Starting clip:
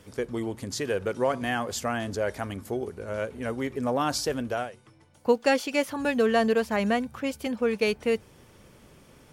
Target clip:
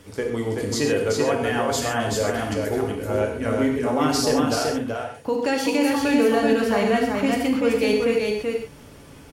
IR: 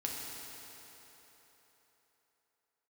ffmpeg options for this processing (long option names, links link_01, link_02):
-filter_complex "[0:a]alimiter=limit=-20dB:level=0:latency=1:release=34,aecho=1:1:381:0.668[link_01];[1:a]atrim=start_sample=2205,afade=type=out:start_time=0.19:duration=0.01,atrim=end_sample=8820[link_02];[link_01][link_02]afir=irnorm=-1:irlink=0,volume=6dB"